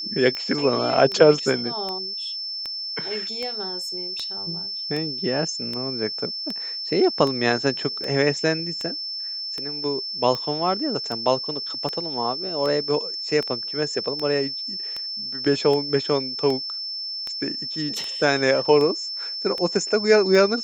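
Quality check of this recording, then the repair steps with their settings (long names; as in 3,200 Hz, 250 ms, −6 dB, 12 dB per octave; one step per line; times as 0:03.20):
scratch tick 78 rpm −16 dBFS
whistle 5,300 Hz −28 dBFS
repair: click removal
notch filter 5,300 Hz, Q 30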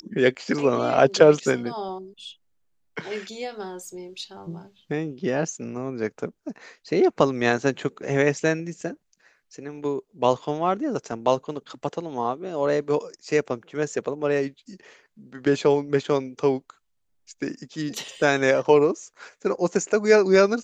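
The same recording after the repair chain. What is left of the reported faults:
none of them is left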